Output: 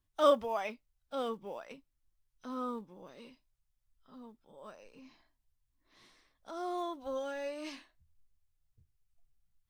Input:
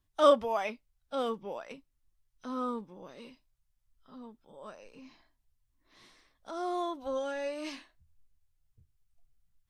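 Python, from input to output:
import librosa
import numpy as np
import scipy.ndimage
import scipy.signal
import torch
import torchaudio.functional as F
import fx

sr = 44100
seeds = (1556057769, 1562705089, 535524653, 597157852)

y = fx.block_float(x, sr, bits=7)
y = y * librosa.db_to_amplitude(-3.5)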